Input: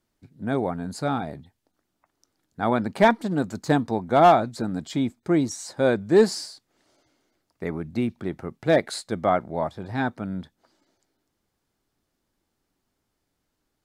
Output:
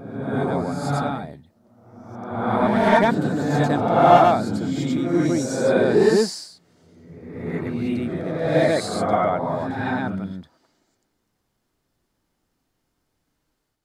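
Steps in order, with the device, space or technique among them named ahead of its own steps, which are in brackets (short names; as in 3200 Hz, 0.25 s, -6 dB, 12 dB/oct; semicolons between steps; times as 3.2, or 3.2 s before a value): reverse reverb (reverse; reverb RT60 1.2 s, pre-delay 81 ms, DRR -5 dB; reverse); gain -3 dB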